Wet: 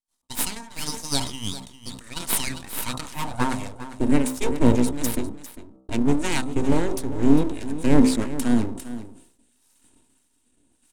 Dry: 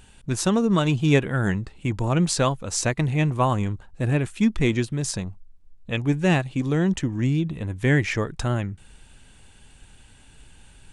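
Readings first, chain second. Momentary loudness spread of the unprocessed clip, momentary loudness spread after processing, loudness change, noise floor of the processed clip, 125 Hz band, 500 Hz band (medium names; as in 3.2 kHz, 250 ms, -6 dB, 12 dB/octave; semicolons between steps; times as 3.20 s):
9 LU, 15 LU, -1.0 dB, -67 dBFS, -7.5 dB, -2.0 dB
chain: octave divider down 2 oct, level -4 dB; peaking EQ 84 Hz -2.5 dB 0.91 oct; harmonic tremolo 1.5 Hz, depth 70%, crossover 790 Hz; rotary cabinet horn 6.7 Hz, later 0.85 Hz, at 6.23 s; high-pass sweep 1.5 kHz -> 130 Hz, 2.43–4.18 s; full-wave rectifier; peaking EQ 8.9 kHz +14 dB 0.97 oct; small resonant body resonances 250/930/3800 Hz, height 9 dB, ringing for 45 ms; expander -45 dBFS; de-hum 64.56 Hz, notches 21; on a send: delay 401 ms -13.5 dB; on the sum: decay stretcher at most 100 dB/s; trim +2 dB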